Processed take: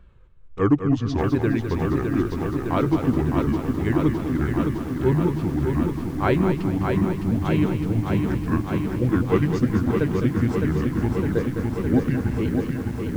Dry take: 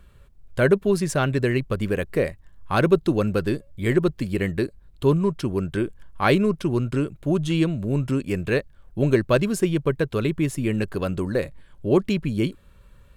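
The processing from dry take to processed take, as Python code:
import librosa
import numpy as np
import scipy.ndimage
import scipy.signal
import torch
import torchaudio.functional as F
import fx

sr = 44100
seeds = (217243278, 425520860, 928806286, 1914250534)

y = fx.pitch_ramps(x, sr, semitones=-9.0, every_ms=1238)
y = fx.spacing_loss(y, sr, db_at_10k=21)
y = fx.echo_feedback(y, sr, ms=207, feedback_pct=37, wet_db=-8.5)
y = fx.echo_crushed(y, sr, ms=610, feedback_pct=80, bits=8, wet_db=-5)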